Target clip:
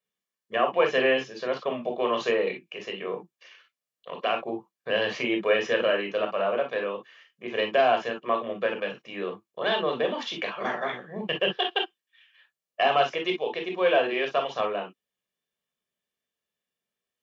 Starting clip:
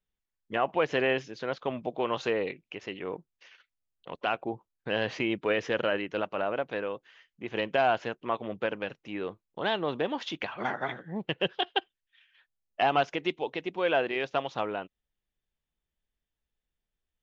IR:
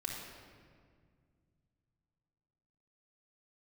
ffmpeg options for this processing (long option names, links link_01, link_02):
-filter_complex "[0:a]highpass=270[link_01];[1:a]atrim=start_sample=2205,atrim=end_sample=4410,asetrate=66150,aresample=44100[link_02];[link_01][link_02]afir=irnorm=-1:irlink=0,volume=8dB"